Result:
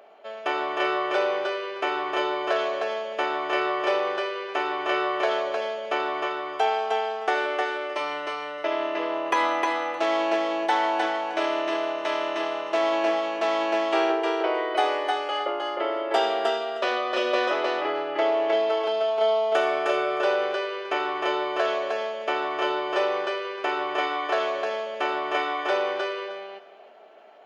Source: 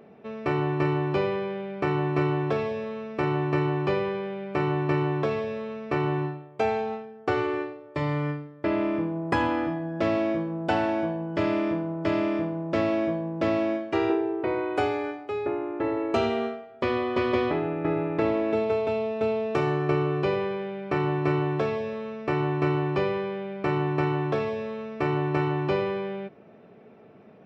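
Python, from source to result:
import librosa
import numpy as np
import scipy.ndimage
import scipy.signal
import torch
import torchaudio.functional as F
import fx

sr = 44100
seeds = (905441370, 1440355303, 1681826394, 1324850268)

y = scipy.signal.sosfilt(scipy.signal.butter(4, 420.0, 'highpass', fs=sr, output='sos'), x)
y = fx.formant_shift(y, sr, semitones=3)
y = fx.echo_feedback(y, sr, ms=309, feedback_pct=15, wet_db=-3)
y = F.gain(torch.from_numpy(y), 3.0).numpy()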